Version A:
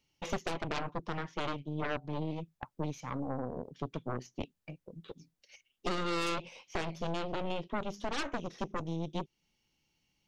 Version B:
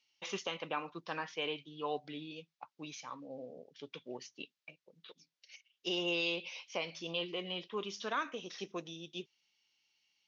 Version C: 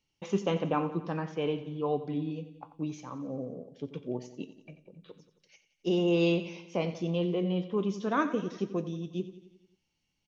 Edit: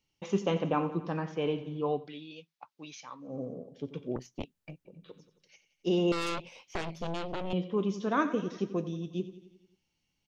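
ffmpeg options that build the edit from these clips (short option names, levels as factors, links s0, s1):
-filter_complex "[0:a]asplit=2[s0][s1];[2:a]asplit=4[s2][s3][s4][s5];[s2]atrim=end=2.13[s6];[1:a]atrim=start=1.89:end=3.41[s7];[s3]atrim=start=3.17:end=4.162[s8];[s0]atrim=start=4.158:end=4.852[s9];[s4]atrim=start=4.848:end=6.122[s10];[s1]atrim=start=6.118:end=7.532[s11];[s5]atrim=start=7.528[s12];[s6][s7]acrossfade=d=0.24:c1=tri:c2=tri[s13];[s13][s8]acrossfade=d=0.24:c1=tri:c2=tri[s14];[s14][s9]acrossfade=d=0.004:c1=hsin:c2=hsin[s15];[s15][s10]acrossfade=d=0.004:c1=hsin:c2=hsin[s16];[s16][s11]acrossfade=d=0.004:c1=hsin:c2=hsin[s17];[s17][s12]acrossfade=d=0.004:c1=hsin:c2=hsin"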